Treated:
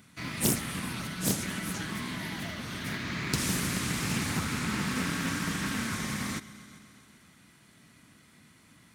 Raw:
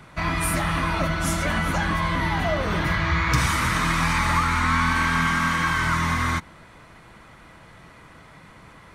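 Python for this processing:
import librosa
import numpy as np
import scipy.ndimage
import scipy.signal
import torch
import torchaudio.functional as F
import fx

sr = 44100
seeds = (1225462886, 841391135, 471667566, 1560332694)

p1 = np.diff(x, prepend=0.0)
p2 = fx.sample_hold(p1, sr, seeds[0], rate_hz=1300.0, jitter_pct=0)
p3 = p1 + (p2 * 10.0 ** (-8.0 / 20.0))
p4 = scipy.signal.sosfilt(scipy.signal.butter(2, 83.0, 'highpass', fs=sr, output='sos'), p3)
p5 = fx.low_shelf_res(p4, sr, hz=330.0, db=12.0, q=1.5)
p6 = p5 + fx.echo_heads(p5, sr, ms=131, heads='all three', feedback_pct=49, wet_db=-22.5, dry=0)
y = fx.doppler_dist(p6, sr, depth_ms=0.74)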